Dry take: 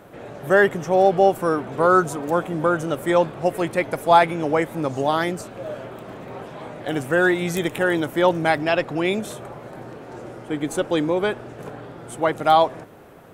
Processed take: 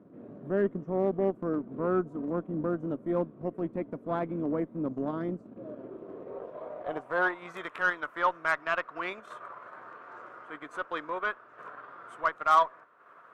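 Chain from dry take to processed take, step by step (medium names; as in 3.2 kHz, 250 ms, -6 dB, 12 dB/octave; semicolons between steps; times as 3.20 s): band-pass sweep 240 Hz -> 1.3 kHz, 5.52–7.67 s; Chebyshev shaper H 6 -28 dB, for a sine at -13 dBFS; band-stop 820 Hz, Q 5.2; transient shaper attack -4 dB, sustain -8 dB; peaking EQ 1.1 kHz +5.5 dB 0.73 oct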